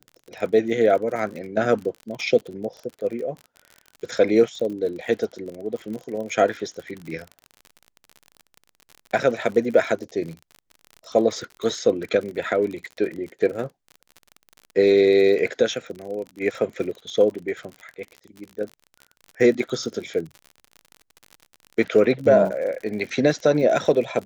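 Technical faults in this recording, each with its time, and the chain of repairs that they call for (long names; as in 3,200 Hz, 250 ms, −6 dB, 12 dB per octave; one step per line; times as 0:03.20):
surface crackle 45 per second −31 dBFS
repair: click removal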